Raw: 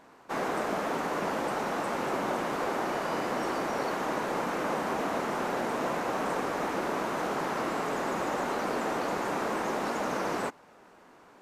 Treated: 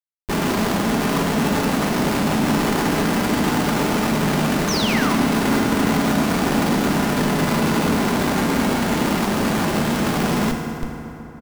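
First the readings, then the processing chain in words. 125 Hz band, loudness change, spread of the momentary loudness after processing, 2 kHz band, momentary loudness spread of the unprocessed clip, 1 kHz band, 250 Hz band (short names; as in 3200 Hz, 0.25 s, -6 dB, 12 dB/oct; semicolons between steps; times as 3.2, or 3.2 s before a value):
+21.0 dB, +11.5 dB, 2 LU, +10.0 dB, 1 LU, +7.0 dB, +17.0 dB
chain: resonant low shelf 350 Hz +11.5 dB, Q 1.5; comb 5 ms, depth 99%; Schmitt trigger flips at -36.5 dBFS; painted sound fall, 4.68–5.14, 920–6600 Hz -28 dBFS; FDN reverb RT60 3.4 s, high-frequency decay 0.55×, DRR 2.5 dB; gain +1.5 dB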